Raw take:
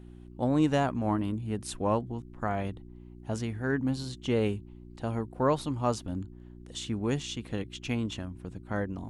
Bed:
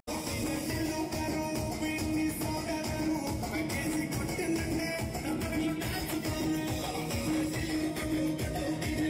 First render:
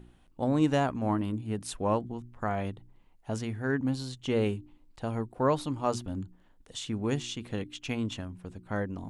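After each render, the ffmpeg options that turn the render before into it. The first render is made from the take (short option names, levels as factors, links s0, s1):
-af "bandreject=f=60:t=h:w=4,bandreject=f=120:t=h:w=4,bandreject=f=180:t=h:w=4,bandreject=f=240:t=h:w=4,bandreject=f=300:t=h:w=4,bandreject=f=360:t=h:w=4"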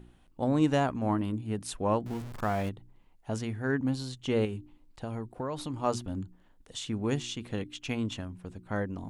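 -filter_complex "[0:a]asettb=1/sr,asplit=3[s0][s1][s2];[s0]atrim=end=2.064[s3];[s1]atrim=start=2.06:end=2.69,asetpts=PTS-STARTPTS,afade=t=in:d=0.004:c=qsin,afade=t=out:st=0.626:d=0.004:c=qsin,aeval=exprs='val(0)+0.5*0.0126*sgn(val(0))':c=same[s4];[s2]atrim=start=2.686[s5];[s3][s4]acrossfade=d=0.004:c1=hsin:c2=qsin[s6];[s6][s5]acrossfade=d=0.004:c1=qsin:c2=hsin,asettb=1/sr,asplit=3[s7][s8][s9];[s7]atrim=end=4.454[s10];[s8]atrim=start=4.45:end=5.74,asetpts=PTS-STARTPTS,afade=t=in:d=0.004:c=qsin,afade=t=out:st=1.286:d=0.004:c=qsin,acompressor=threshold=0.0316:ratio=6:attack=3.2:release=140:knee=1:detection=peak[s11];[s9]atrim=start=5.736[s12];[s10][s11]acrossfade=d=0.004:c1=hsin:c2=qsin[s13];[s13][s12]acrossfade=d=0.004:c1=qsin:c2=hsin"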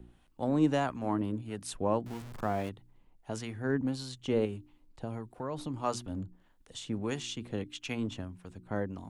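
-filter_complex "[0:a]acrossover=split=150|1300[s0][s1][s2];[s0]aeval=exprs='0.0126*(abs(mod(val(0)/0.0126+3,4)-2)-1)':c=same[s3];[s3][s1][s2]amix=inputs=3:normalize=0,acrossover=split=850[s4][s5];[s4]aeval=exprs='val(0)*(1-0.5/2+0.5/2*cos(2*PI*1.6*n/s))':c=same[s6];[s5]aeval=exprs='val(0)*(1-0.5/2-0.5/2*cos(2*PI*1.6*n/s))':c=same[s7];[s6][s7]amix=inputs=2:normalize=0"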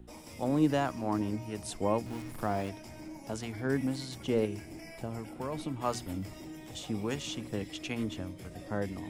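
-filter_complex "[1:a]volume=0.2[s0];[0:a][s0]amix=inputs=2:normalize=0"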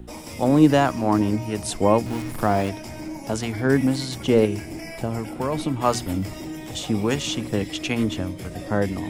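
-af "volume=3.76"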